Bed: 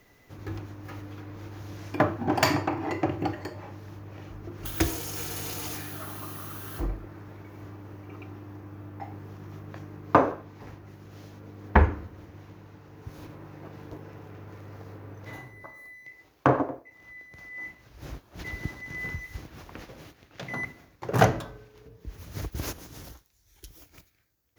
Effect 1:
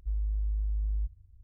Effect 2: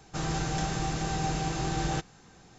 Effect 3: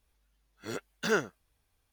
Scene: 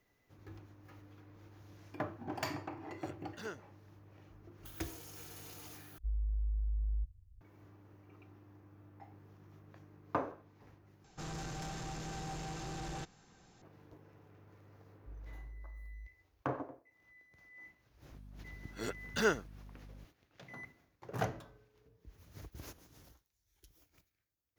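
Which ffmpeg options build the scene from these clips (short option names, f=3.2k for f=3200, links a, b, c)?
-filter_complex "[3:a]asplit=2[a][b];[1:a]asplit=2[c][d];[0:a]volume=-16dB[e];[2:a]asoftclip=type=tanh:threshold=-30.5dB[f];[d]highpass=45[g];[b]aeval=exprs='val(0)+0.00355*(sin(2*PI*50*n/s)+sin(2*PI*2*50*n/s)/2+sin(2*PI*3*50*n/s)/3+sin(2*PI*4*50*n/s)/4+sin(2*PI*5*50*n/s)/5)':c=same[h];[e]asplit=3[i][j][k];[i]atrim=end=5.984[l];[c]atrim=end=1.43,asetpts=PTS-STARTPTS,volume=-4.5dB[m];[j]atrim=start=7.406:end=11.044[n];[f]atrim=end=2.58,asetpts=PTS-STARTPTS,volume=-8dB[o];[k]atrim=start=13.616[p];[a]atrim=end=1.92,asetpts=PTS-STARTPTS,volume=-17dB,afade=t=in:d=0.004:c=hsin,afade=t=out:st=1.916:d=0.004:c=hsin,adelay=2340[q];[g]atrim=end=1.43,asetpts=PTS-STARTPTS,volume=-16.5dB,afade=t=in:d=0.004:c=hsin,afade=t=out:st=1.426:d=0.004:c=hsin,adelay=15000[r];[h]atrim=end=1.92,asetpts=PTS-STARTPTS,volume=-2.5dB,afade=t=in:d=0.004:c=hsin,afade=t=out:st=1.916:d=0.004:c=hsin,adelay=18130[s];[l][m]acrossfade=d=0.004:c1=hsin:c2=hsin[t];[t][n]acrossfade=d=0.004:c1=hsin:c2=hsin[u];[u][o]acrossfade=d=0.004:c1=hsin:c2=hsin[v];[v][p]acrossfade=d=0.004:c1=hsin:c2=hsin[w];[w][q][r][s]amix=inputs=4:normalize=0"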